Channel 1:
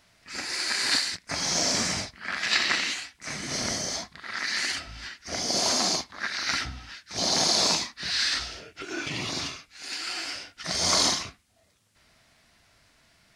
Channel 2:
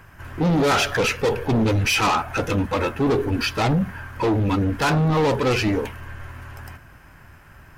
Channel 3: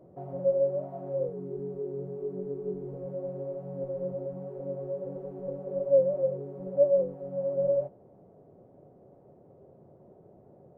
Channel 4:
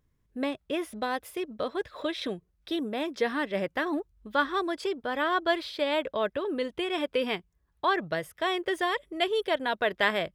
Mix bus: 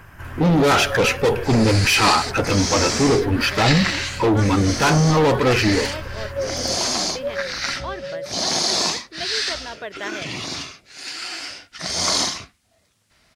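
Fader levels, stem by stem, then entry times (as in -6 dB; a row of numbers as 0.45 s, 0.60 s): +2.5 dB, +3.0 dB, -5.0 dB, -6.0 dB; 1.15 s, 0.00 s, 0.45 s, 0.00 s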